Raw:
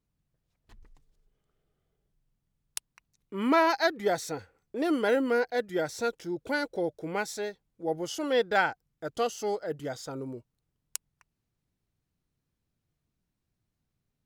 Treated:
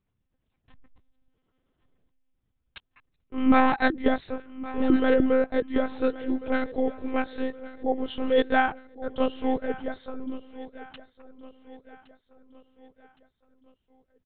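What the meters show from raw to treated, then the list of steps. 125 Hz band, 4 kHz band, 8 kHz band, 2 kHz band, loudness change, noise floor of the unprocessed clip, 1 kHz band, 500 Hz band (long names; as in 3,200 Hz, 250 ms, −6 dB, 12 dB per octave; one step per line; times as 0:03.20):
−0.5 dB, −2.0 dB, below −35 dB, +1.0 dB, +3.5 dB, −83 dBFS, +2.5 dB, +2.0 dB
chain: one-pitch LPC vocoder at 8 kHz 260 Hz
dynamic equaliser 260 Hz, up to +7 dB, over −42 dBFS, Q 1.1
repeating echo 1,115 ms, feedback 47%, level −17 dB
level +2 dB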